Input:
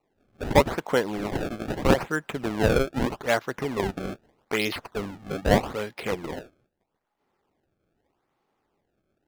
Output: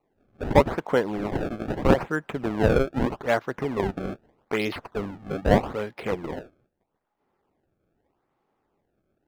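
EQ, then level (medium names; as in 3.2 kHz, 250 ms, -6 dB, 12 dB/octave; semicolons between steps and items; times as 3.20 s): treble shelf 3 kHz -11.5 dB; +1.5 dB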